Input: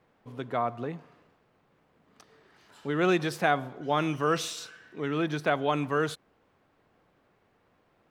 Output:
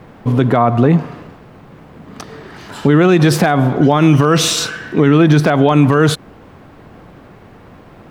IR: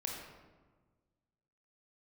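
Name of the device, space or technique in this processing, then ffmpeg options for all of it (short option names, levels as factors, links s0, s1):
mastering chain: -af "equalizer=f=470:t=o:w=1.3:g=-4,acompressor=threshold=0.0251:ratio=2.5,tiltshelf=f=780:g=5,asoftclip=type=hard:threshold=0.0891,alimiter=level_in=25.1:limit=0.891:release=50:level=0:latency=1,volume=0.891"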